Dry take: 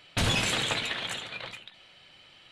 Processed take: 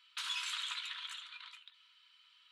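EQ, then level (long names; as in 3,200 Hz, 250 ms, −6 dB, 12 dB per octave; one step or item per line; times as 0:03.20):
Chebyshev high-pass with heavy ripple 950 Hz, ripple 6 dB
−8.5 dB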